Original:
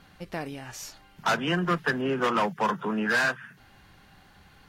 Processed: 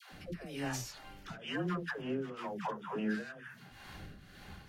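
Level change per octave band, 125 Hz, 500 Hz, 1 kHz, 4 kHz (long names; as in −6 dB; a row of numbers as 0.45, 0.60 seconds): −7.5, −11.0, −14.5, −11.5 decibels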